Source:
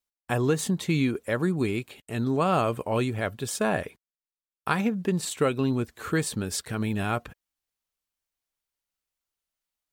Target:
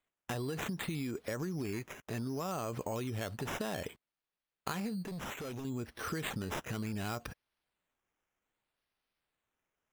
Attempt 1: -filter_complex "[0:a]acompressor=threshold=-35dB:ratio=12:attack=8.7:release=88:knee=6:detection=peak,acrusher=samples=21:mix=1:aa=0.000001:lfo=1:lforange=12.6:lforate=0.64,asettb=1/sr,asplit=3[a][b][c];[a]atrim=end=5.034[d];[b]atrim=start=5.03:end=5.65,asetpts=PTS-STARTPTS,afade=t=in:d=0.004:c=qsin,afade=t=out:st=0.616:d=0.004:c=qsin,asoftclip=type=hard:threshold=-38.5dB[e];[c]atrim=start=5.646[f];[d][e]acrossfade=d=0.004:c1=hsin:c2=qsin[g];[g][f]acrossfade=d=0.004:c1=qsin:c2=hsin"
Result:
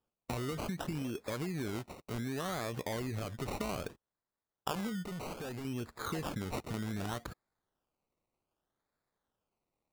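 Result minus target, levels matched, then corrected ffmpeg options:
decimation with a swept rate: distortion +5 dB
-filter_complex "[0:a]acompressor=threshold=-35dB:ratio=12:attack=8.7:release=88:knee=6:detection=peak,acrusher=samples=8:mix=1:aa=0.000001:lfo=1:lforange=4.8:lforate=0.64,asettb=1/sr,asplit=3[a][b][c];[a]atrim=end=5.034[d];[b]atrim=start=5.03:end=5.65,asetpts=PTS-STARTPTS,afade=t=in:d=0.004:c=qsin,afade=t=out:st=0.616:d=0.004:c=qsin,asoftclip=type=hard:threshold=-38.5dB[e];[c]atrim=start=5.646[f];[d][e]acrossfade=d=0.004:c1=hsin:c2=qsin[g];[g][f]acrossfade=d=0.004:c1=qsin:c2=hsin"

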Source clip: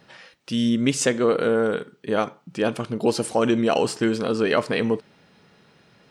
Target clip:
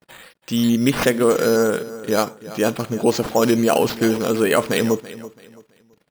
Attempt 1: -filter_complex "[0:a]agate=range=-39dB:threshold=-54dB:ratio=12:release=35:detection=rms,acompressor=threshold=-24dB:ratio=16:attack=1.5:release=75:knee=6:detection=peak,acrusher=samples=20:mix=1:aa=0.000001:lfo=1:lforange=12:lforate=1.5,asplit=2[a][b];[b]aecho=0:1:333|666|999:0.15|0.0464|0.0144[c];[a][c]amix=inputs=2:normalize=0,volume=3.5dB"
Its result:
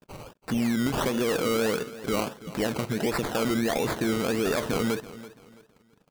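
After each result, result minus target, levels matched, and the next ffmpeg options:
compressor: peak gain reduction +13.5 dB; decimation with a swept rate: distortion +9 dB
-filter_complex "[0:a]agate=range=-39dB:threshold=-54dB:ratio=12:release=35:detection=rms,acrusher=samples=20:mix=1:aa=0.000001:lfo=1:lforange=12:lforate=1.5,asplit=2[a][b];[b]aecho=0:1:333|666|999:0.15|0.0464|0.0144[c];[a][c]amix=inputs=2:normalize=0,volume=3.5dB"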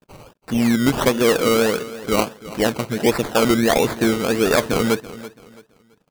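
decimation with a swept rate: distortion +9 dB
-filter_complex "[0:a]agate=range=-39dB:threshold=-54dB:ratio=12:release=35:detection=rms,acrusher=samples=6:mix=1:aa=0.000001:lfo=1:lforange=3.6:lforate=1.5,asplit=2[a][b];[b]aecho=0:1:333|666|999:0.15|0.0464|0.0144[c];[a][c]amix=inputs=2:normalize=0,volume=3.5dB"

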